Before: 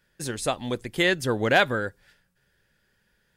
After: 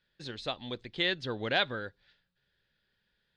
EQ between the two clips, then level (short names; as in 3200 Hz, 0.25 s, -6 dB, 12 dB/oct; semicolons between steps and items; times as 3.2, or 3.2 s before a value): ladder low-pass 4400 Hz, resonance 60%; 0.0 dB